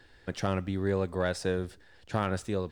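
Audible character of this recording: noise floor -57 dBFS; spectral tilt -6.0 dB/oct

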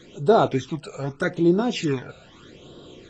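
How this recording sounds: phasing stages 12, 0.81 Hz, lowest notch 320–2200 Hz; AAC

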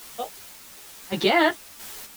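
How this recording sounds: a quantiser's noise floor 8-bit, dither triangular; random-step tremolo 3.9 Hz, depth 55%; a shimmering, thickened sound

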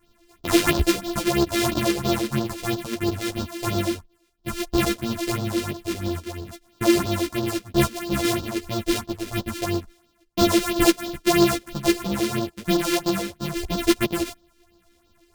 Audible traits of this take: a buzz of ramps at a fixed pitch in blocks of 128 samples; phasing stages 4, 3 Hz, lowest notch 120–2200 Hz; tremolo saw up 8.4 Hz, depth 35%; a shimmering, thickened sound

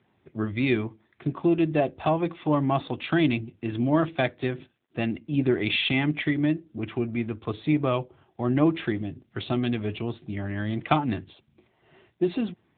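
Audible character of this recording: a quantiser's noise floor 12-bit, dither none; AMR-NB

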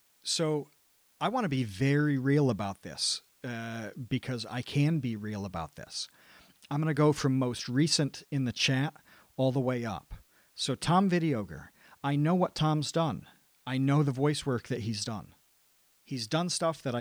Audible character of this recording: tremolo triangle 1.3 Hz, depth 45%; a quantiser's noise floor 12-bit, dither triangular

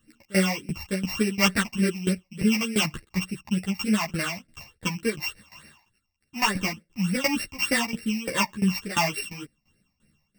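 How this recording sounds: a buzz of ramps at a fixed pitch in blocks of 16 samples; phasing stages 8, 3.4 Hz, lowest notch 420–1000 Hz; tremolo saw down 2.9 Hz, depth 90%; a shimmering, thickened sound

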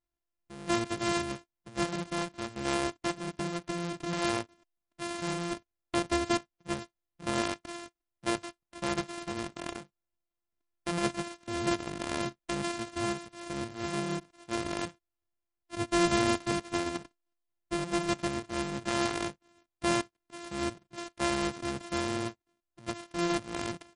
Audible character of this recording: a buzz of ramps at a fixed pitch in blocks of 128 samples; MP3

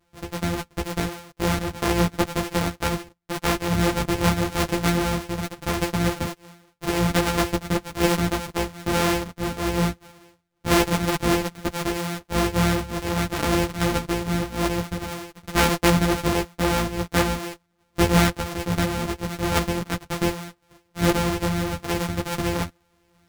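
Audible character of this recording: a buzz of ramps at a fixed pitch in blocks of 256 samples; random-step tremolo; a shimmering, thickened sound

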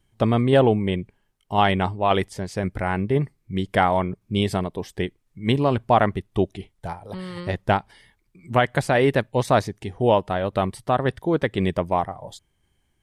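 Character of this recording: tremolo saw down 1.9 Hz, depth 30%

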